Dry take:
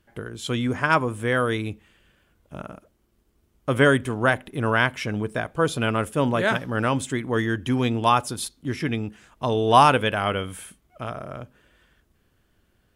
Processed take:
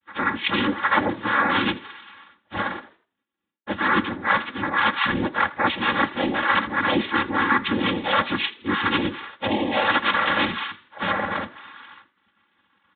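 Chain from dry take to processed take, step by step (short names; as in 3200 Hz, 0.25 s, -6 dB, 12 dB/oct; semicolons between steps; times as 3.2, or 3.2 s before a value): inharmonic rescaling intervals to 89%; band shelf 1700 Hz +13 dB 1.3 oct; reverse; compressor 10:1, threshold -28 dBFS, peak gain reduction 20.5 dB; reverse; noise vocoder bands 6; expander -56 dBFS; downsampling 8000 Hz; comb 3.6 ms, depth 89%; frequency-shifting echo 81 ms, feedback 39%, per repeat +43 Hz, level -20 dB; gain +8 dB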